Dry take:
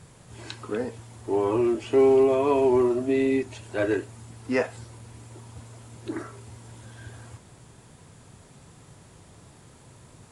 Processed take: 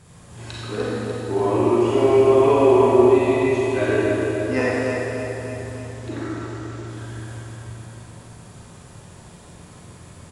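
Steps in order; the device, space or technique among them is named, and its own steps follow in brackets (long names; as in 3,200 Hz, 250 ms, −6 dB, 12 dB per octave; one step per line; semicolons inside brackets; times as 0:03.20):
0:05.73–0:06.87: low-pass filter 7,400 Hz 24 dB per octave
tunnel (flutter between parallel walls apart 7.9 metres, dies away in 0.31 s; convolution reverb RT60 2.3 s, pre-delay 34 ms, DRR −6 dB)
repeating echo 296 ms, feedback 58%, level −7 dB
level −1 dB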